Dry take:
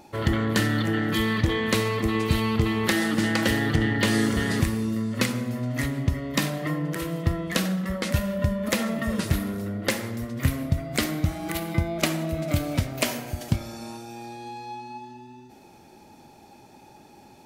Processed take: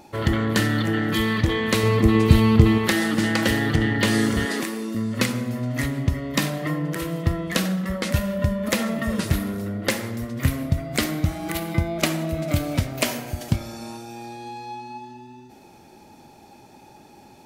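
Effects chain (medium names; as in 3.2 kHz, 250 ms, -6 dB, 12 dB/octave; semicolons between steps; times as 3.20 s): 1.83–2.78 s: bass shelf 470 Hz +8 dB; 4.45–4.95 s: high-pass 250 Hz 24 dB/octave; trim +2 dB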